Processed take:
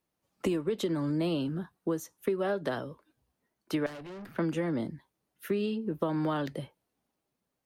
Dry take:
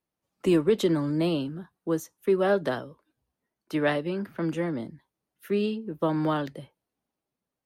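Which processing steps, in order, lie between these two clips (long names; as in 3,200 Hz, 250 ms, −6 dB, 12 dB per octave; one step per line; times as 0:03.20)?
downward compressor 10 to 1, threshold −30 dBFS, peak gain reduction 13.5 dB
0:03.86–0:04.36: tube saturation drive 45 dB, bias 0.5
level +3.5 dB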